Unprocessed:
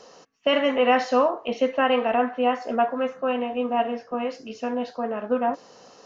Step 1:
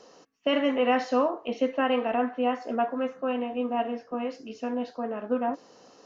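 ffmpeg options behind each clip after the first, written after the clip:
-af "equalizer=f=300:w=2:g=6.5,volume=0.531"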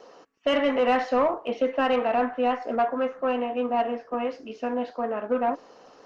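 -filter_complex "[0:a]asplit=2[s0][s1];[s1]highpass=f=720:p=1,volume=5.01,asoftclip=type=tanh:threshold=0.251[s2];[s0][s2]amix=inputs=2:normalize=0,lowpass=f=1800:p=1,volume=0.501" -ar 48000 -c:a libopus -b:a 24k

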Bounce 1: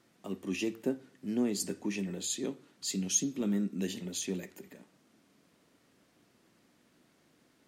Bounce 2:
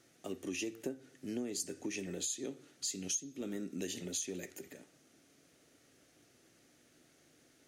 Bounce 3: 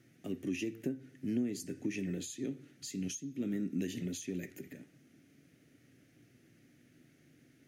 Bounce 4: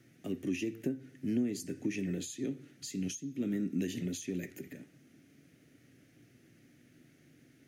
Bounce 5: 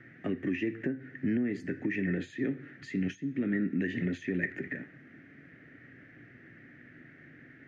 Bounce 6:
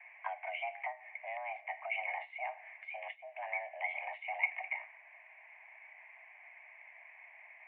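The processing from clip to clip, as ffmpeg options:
-af "equalizer=f=200:t=o:w=0.33:g=-12,equalizer=f=1000:t=o:w=0.33:g=-12,equalizer=f=6300:t=o:w=0.33:g=7,equalizer=f=10000:t=o:w=0.33:g=5,acompressor=threshold=0.0141:ratio=6,volume=1.19"
-af "equalizer=f=125:t=o:w=1:g=10,equalizer=f=250:t=o:w=1:g=6,equalizer=f=500:t=o:w=1:g=-3,equalizer=f=1000:t=o:w=1:g=-10,equalizer=f=2000:t=o:w=1:g=5,equalizer=f=4000:t=o:w=1:g=-5,equalizer=f=8000:t=o:w=1:g=-8"
-filter_complex "[0:a]acrossover=split=450[s0][s1];[s1]acompressor=threshold=0.01:ratio=6[s2];[s0][s2]amix=inputs=2:normalize=0,volume=1.26"
-af "alimiter=level_in=1.68:limit=0.0631:level=0:latency=1:release=320,volume=0.596,lowpass=f=1800:t=q:w=4.8,volume=2.11"
-af "highpass=f=460:t=q:w=0.5412,highpass=f=460:t=q:w=1.307,lowpass=f=2100:t=q:w=0.5176,lowpass=f=2100:t=q:w=0.7071,lowpass=f=2100:t=q:w=1.932,afreqshift=360,volume=1.26"

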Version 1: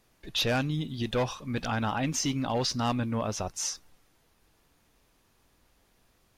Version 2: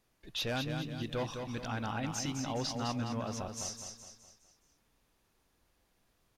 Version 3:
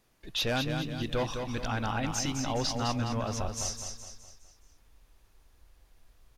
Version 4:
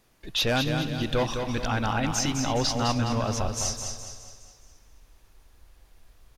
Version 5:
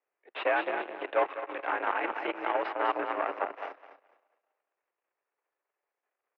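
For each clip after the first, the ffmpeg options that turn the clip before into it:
-af "aecho=1:1:208|416|624|832|1040:0.501|0.226|0.101|0.0457|0.0206,volume=0.398"
-af "asubboost=boost=6.5:cutoff=68,volume=1.88"
-af "aecho=1:1:275|550|825|1100:0.15|0.0658|0.029|0.0127,volume=1.78"
-af "aeval=exprs='0.211*(cos(1*acos(clip(val(0)/0.211,-1,1)))-cos(1*PI/2))+0.0376*(cos(4*acos(clip(val(0)/0.211,-1,1)))-cos(4*PI/2))+0.0266*(cos(7*acos(clip(val(0)/0.211,-1,1)))-cos(7*PI/2))':c=same,highpass=f=340:t=q:w=0.5412,highpass=f=340:t=q:w=1.307,lowpass=f=2400:t=q:w=0.5176,lowpass=f=2400:t=q:w=0.7071,lowpass=f=2400:t=q:w=1.932,afreqshift=59"

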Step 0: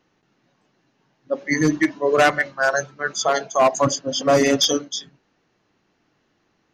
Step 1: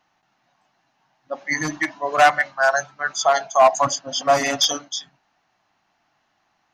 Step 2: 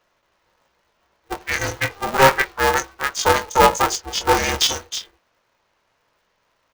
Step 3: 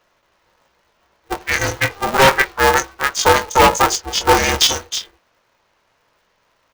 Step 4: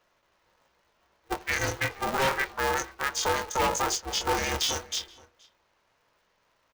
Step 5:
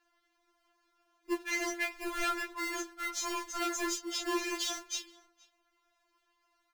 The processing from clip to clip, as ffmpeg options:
-af "lowshelf=f=580:t=q:w=3:g=-7.5"
-filter_complex "[0:a]asplit=2[s0][s1];[s1]adelay=22,volume=0.447[s2];[s0][s2]amix=inputs=2:normalize=0,aeval=exprs='val(0)*sgn(sin(2*PI*200*n/s))':c=same"
-af "aeval=exprs='0.376*(abs(mod(val(0)/0.376+3,4)-2)-1)':c=same,volume=1.68"
-filter_complex "[0:a]alimiter=limit=0.266:level=0:latency=1:release=12,asplit=2[s0][s1];[s1]adelay=472.3,volume=0.0891,highshelf=f=4000:g=-10.6[s2];[s0][s2]amix=inputs=2:normalize=0,volume=0.422"
-af "afftfilt=real='re*4*eq(mod(b,16),0)':imag='im*4*eq(mod(b,16),0)':win_size=2048:overlap=0.75,volume=0.708"

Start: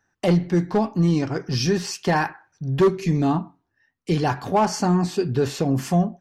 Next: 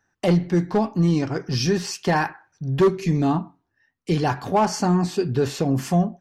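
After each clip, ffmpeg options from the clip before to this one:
-af anull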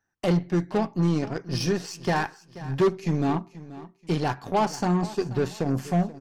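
-af "aeval=exprs='0.316*(cos(1*acos(clip(val(0)/0.316,-1,1)))-cos(1*PI/2))+0.00891*(cos(6*acos(clip(val(0)/0.316,-1,1)))-cos(6*PI/2))+0.02*(cos(7*acos(clip(val(0)/0.316,-1,1)))-cos(7*PI/2))':c=same,aecho=1:1:482|964|1446:0.141|0.0424|0.0127,volume=0.631"

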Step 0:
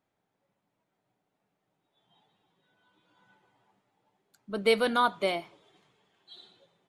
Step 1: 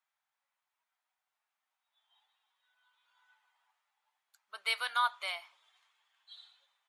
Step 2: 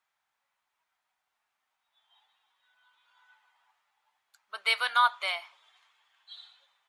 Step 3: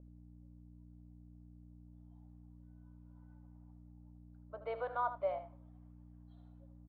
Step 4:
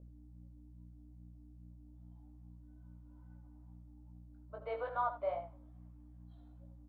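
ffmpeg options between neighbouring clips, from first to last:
-af "highpass=f=980:w=0.5412,highpass=f=980:w=1.3066,volume=0.75"
-af "highshelf=f=7200:g=-7.5,volume=2.24"
-af "aeval=exprs='val(0)+0.00282*(sin(2*PI*60*n/s)+sin(2*PI*2*60*n/s)/2+sin(2*PI*3*60*n/s)/3+sin(2*PI*4*60*n/s)/4+sin(2*PI*5*60*n/s)/5)':c=same,lowpass=f=560:t=q:w=4.9,aecho=1:1:77:0.266,volume=0.631"
-af "flanger=delay=17.5:depth=2.5:speed=2.4,volume=1.5"

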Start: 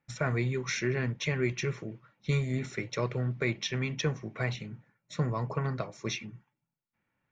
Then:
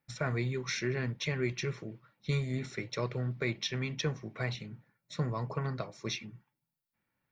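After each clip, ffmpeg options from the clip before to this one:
-af "aexciter=amount=1.4:drive=5.2:freq=3800,volume=0.708"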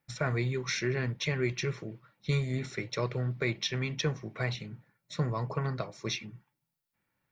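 -af "equalizer=f=240:w=4.9:g=-3,volume=1.33"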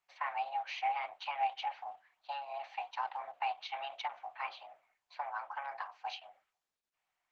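-af "highpass=f=310:w=0.5412,highpass=f=310:w=1.3066,equalizer=f=320:t=q:w=4:g=4,equalizer=f=500:t=q:w=4:g=-5,equalizer=f=990:t=q:w=4:g=-10,equalizer=f=1500:t=q:w=4:g=-6,equalizer=f=2200:t=q:w=4:g=-9,lowpass=f=2600:w=0.5412,lowpass=f=2600:w=1.3066,afreqshift=420" -ar 48000 -c:a libopus -b:a 10k

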